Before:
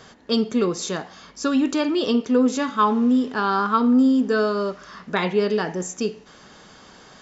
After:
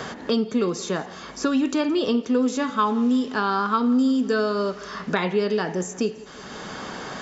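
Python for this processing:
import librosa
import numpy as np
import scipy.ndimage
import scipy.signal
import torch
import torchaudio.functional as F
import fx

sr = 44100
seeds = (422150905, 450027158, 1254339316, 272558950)

y = fx.echo_feedback(x, sr, ms=169, feedback_pct=50, wet_db=-23.0)
y = fx.band_squash(y, sr, depth_pct=70)
y = F.gain(torch.from_numpy(y), -2.0).numpy()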